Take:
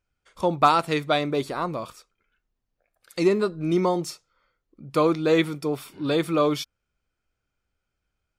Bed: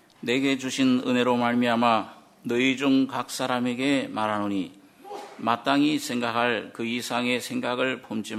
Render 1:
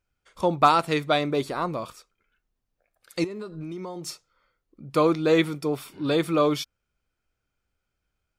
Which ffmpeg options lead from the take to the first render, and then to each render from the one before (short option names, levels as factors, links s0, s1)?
-filter_complex "[0:a]asettb=1/sr,asplit=3[s0][s1][s2];[s0]atrim=end=3.244[s3];[s1]atrim=start=3.24:end=4.07,asetpts=PTS-STARTPTS,afade=t=in:d=0.004:c=qsin,afade=t=out:st=0.826:d=0.004:c=qsin,acompressor=threshold=0.0282:ratio=16:attack=3.2:release=140:knee=1:detection=peak[s4];[s2]atrim=start=4.066[s5];[s3][s4]acrossfade=d=0.004:c1=hsin:c2=qsin[s6];[s6][s5]acrossfade=d=0.004:c1=qsin:c2=hsin"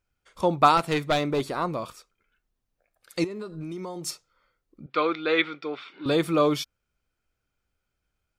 -filter_complex "[0:a]asettb=1/sr,asplit=3[s0][s1][s2];[s0]atrim=end=0.774[s3];[s1]atrim=start=0.77:end=1.56,asetpts=PTS-STARTPTS,afade=t=in:d=0.004:c=qsin,afade=t=out:st=0.786:d=0.004:c=qsin,aeval=exprs='clip(val(0),-1,0.0841)':c=same[s4];[s2]atrim=start=1.556[s5];[s3][s4]acrossfade=d=0.004:c1=hsin:c2=qsin[s6];[s6][s5]acrossfade=d=0.004:c1=qsin:c2=hsin,asettb=1/sr,asplit=3[s7][s8][s9];[s7]atrim=end=3.494[s10];[s8]atrim=start=3.49:end=4.11,asetpts=PTS-STARTPTS,afade=t=in:d=0.004:c=qsin,afade=t=out:st=0.616:d=0.004:c=qsin,equalizer=f=10000:t=o:w=1.3:g=5.5[s11];[s9]atrim=start=4.106[s12];[s10][s11]acrossfade=d=0.004:c1=hsin:c2=qsin[s13];[s13][s12]acrossfade=d=0.004:c1=qsin:c2=hsin,asettb=1/sr,asplit=3[s14][s15][s16];[s14]atrim=end=4.864[s17];[s15]atrim=start=4.86:end=6.06,asetpts=PTS-STARTPTS,afade=t=in:d=0.004:c=qsin,afade=t=out:st=1.196:d=0.004:c=qsin,highpass=420,equalizer=f=420:t=q:w=4:g=-3,equalizer=f=640:t=q:w=4:g=-6,equalizer=f=940:t=q:w=4:g=-5,equalizer=f=1400:t=q:w=4:g=6,equalizer=f=2200:t=q:w=4:g=6,equalizer=f=3600:t=q:w=4:g=4,lowpass=f=4000:w=0.5412,lowpass=f=4000:w=1.3066[s18];[s16]atrim=start=6.056[s19];[s17][s18]acrossfade=d=0.004:c1=hsin:c2=qsin[s20];[s20][s19]acrossfade=d=0.004:c1=qsin:c2=hsin"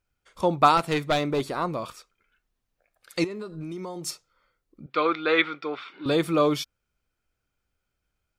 -filter_complex "[0:a]asettb=1/sr,asplit=3[s0][s1][s2];[s0]atrim=end=1.844[s3];[s1]atrim=start=1.84:end=3.36,asetpts=PTS-STARTPTS,afade=t=in:d=0.004:c=qsin,afade=t=out:st=1.516:d=0.004:c=qsin,equalizer=f=2100:w=0.41:g=3.5[s4];[s2]atrim=start=3.356[s5];[s3][s4]acrossfade=d=0.004:c1=hsin:c2=qsin[s6];[s6][s5]acrossfade=d=0.004:c1=qsin:c2=hsin,asettb=1/sr,asplit=3[s7][s8][s9];[s7]atrim=end=5.054[s10];[s8]atrim=start=5.05:end=5.97,asetpts=PTS-STARTPTS,afade=t=in:d=0.004:c=qsin,afade=t=out:st=0.916:d=0.004:c=qsin,equalizer=f=1200:w=1:g=5[s11];[s9]atrim=start=5.966[s12];[s10][s11]acrossfade=d=0.004:c1=hsin:c2=qsin[s13];[s13][s12]acrossfade=d=0.004:c1=qsin:c2=hsin"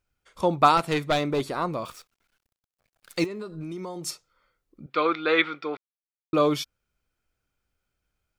-filter_complex "[0:a]asettb=1/sr,asplit=3[s0][s1][s2];[s0]atrim=end=1.854[s3];[s1]atrim=start=1.85:end=3.26,asetpts=PTS-STARTPTS,afade=t=in:d=0.004:c=qsin,afade=t=out:st=1.406:d=0.004:c=qsin,acrusher=bits=9:dc=4:mix=0:aa=0.000001[s4];[s2]atrim=start=3.256[s5];[s3][s4]acrossfade=d=0.004:c1=hsin:c2=qsin[s6];[s6][s5]acrossfade=d=0.004:c1=qsin:c2=hsin,asplit=3[s7][s8][s9];[s7]atrim=end=5.77,asetpts=PTS-STARTPTS,afade=t=out:st=5.766:d=0.004:c=hsin[s10];[s8]atrim=start=5.77:end=6.33,asetpts=PTS-STARTPTS,volume=0[s11];[s9]atrim=start=6.33,asetpts=PTS-STARTPTS,afade=t=in:d=0.004:c=hsin[s12];[s10][s11][s12]concat=n=3:v=0:a=1"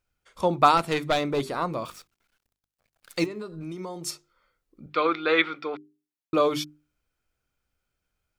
-af "bandreject=f=50:t=h:w=6,bandreject=f=100:t=h:w=6,bandreject=f=150:t=h:w=6,bandreject=f=200:t=h:w=6,bandreject=f=250:t=h:w=6,bandreject=f=300:t=h:w=6,bandreject=f=350:t=h:w=6,bandreject=f=400:t=h:w=6"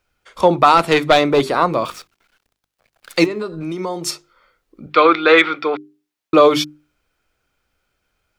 -filter_complex "[0:a]acrossover=split=270|5200[s0][s1][s2];[s1]acontrast=44[s3];[s0][s3][s2]amix=inputs=3:normalize=0,alimiter=level_in=2.24:limit=0.891:release=50:level=0:latency=1"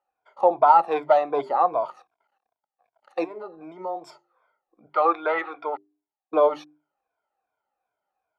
-af "afftfilt=real='re*pow(10,14/40*sin(2*PI*(1.7*log(max(b,1)*sr/1024/100)/log(2)-(-2.6)*(pts-256)/sr)))':imag='im*pow(10,14/40*sin(2*PI*(1.7*log(max(b,1)*sr/1024/100)/log(2)-(-2.6)*(pts-256)/sr)))':win_size=1024:overlap=0.75,bandpass=f=780:t=q:w=4.3:csg=0"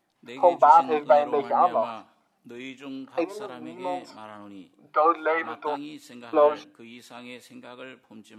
-filter_complex "[1:a]volume=0.15[s0];[0:a][s0]amix=inputs=2:normalize=0"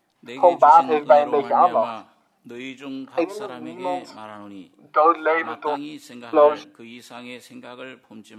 -af "volume=1.68,alimiter=limit=0.794:level=0:latency=1"